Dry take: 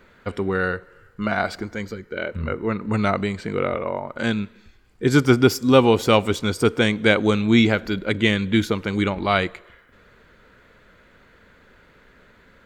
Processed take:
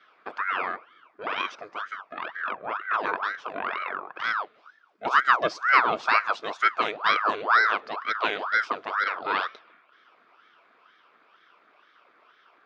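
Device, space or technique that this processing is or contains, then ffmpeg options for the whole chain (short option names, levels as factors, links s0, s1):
voice changer toy: -af "aeval=exprs='val(0)*sin(2*PI*990*n/s+990*0.8/2.1*sin(2*PI*2.1*n/s))':c=same,highpass=550,equalizer=f=550:t=q:w=4:g=-4,equalizer=f=830:t=q:w=4:g=-7,equalizer=f=1300:t=q:w=4:g=4,equalizer=f=1900:t=q:w=4:g=-7,equalizer=f=2900:t=q:w=4:g=-6,equalizer=f=4100:t=q:w=4:g=-7,lowpass=f=4500:w=0.5412,lowpass=f=4500:w=1.3066"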